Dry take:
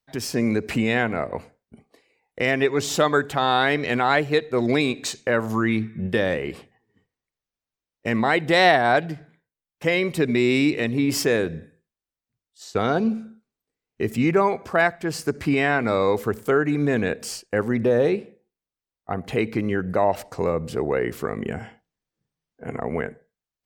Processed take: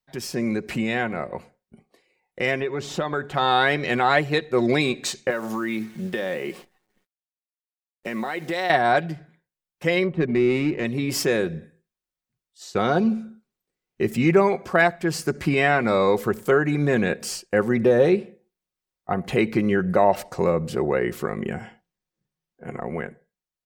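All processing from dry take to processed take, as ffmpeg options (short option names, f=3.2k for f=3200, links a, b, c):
-filter_complex "[0:a]asettb=1/sr,asplit=3[a][b][c];[a]atrim=end=2.604[d];[b]atrim=start=2.6:end=3.34,asetpts=PTS-STARTPTS,afade=t=in:d=0.004:c=qsin,afade=t=out:st=0.736:d=0.004:c=qsin,lowpass=f=2.3k:p=1,acompressor=threshold=-20dB:ratio=3:attack=3.2:release=140:knee=1:detection=peak[e];[c]atrim=start=3.336[f];[d][e]acrossfade=d=0.004:c1=hsin:c2=qsin[g];[g][f]acrossfade=d=0.004:c1=qsin:c2=hsin,asettb=1/sr,asplit=3[h][i][j];[h]atrim=end=5.304[k];[i]atrim=start=5.3:end=8.7,asetpts=PTS-STARTPTS,afade=t=in:d=0.004:c=qsin,afade=t=out:st=3.396:d=0.004:c=qsin,highpass=210,acompressor=threshold=-23dB:ratio=5:attack=3.2:release=140:knee=1:detection=peak,acrusher=bits=9:dc=4:mix=0:aa=0.000001[l];[j]atrim=start=8.696[m];[k][l]acrossfade=d=0.004:c1=hsin:c2=qsin[n];[n][m]acrossfade=d=0.004:c1=qsin:c2=hsin,asettb=1/sr,asplit=3[o][p][q];[o]atrim=end=10.044[r];[p]atrim=start=10.04:end=10.85,asetpts=PTS-STARTPTS,afade=t=in:d=0.004:c=qsin,afade=t=out:st=0.806:d=0.004:c=qsin,adynamicsmooth=sensitivity=1:basefreq=1.3k,bass=f=250:g=1,treble=f=4k:g=-8[s];[q]atrim=start=10.846[t];[r][s]acrossfade=d=0.004:c1=hsin:c2=qsin[u];[u][t]acrossfade=d=0.004:c1=qsin:c2=hsin,aecho=1:1:5.5:0.42,dynaudnorm=f=510:g=13:m=11.5dB,volume=-3.5dB"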